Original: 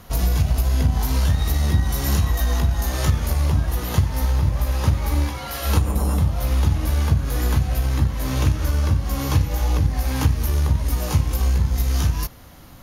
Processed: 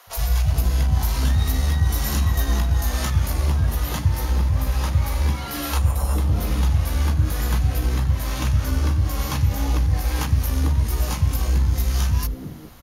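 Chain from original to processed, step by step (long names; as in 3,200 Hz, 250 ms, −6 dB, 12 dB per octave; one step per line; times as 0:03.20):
three-band delay without the direct sound highs, lows, mids 70/420 ms, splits 160/510 Hz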